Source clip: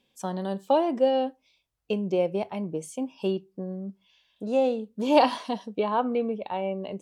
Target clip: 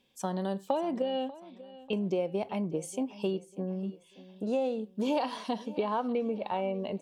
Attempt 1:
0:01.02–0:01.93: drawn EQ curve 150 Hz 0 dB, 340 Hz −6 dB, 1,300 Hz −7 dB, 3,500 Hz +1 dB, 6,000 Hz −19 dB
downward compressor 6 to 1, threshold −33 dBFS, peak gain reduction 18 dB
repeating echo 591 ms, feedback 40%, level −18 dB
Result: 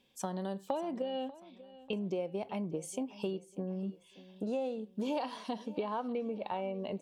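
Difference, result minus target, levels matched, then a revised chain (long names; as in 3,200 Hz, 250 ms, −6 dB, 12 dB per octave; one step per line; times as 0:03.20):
downward compressor: peak gain reduction +5.5 dB
0:01.02–0:01.93: drawn EQ curve 150 Hz 0 dB, 340 Hz −6 dB, 1,300 Hz −7 dB, 3,500 Hz +1 dB, 6,000 Hz −19 dB
downward compressor 6 to 1, threshold −26.5 dBFS, peak gain reduction 13 dB
repeating echo 591 ms, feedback 40%, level −18 dB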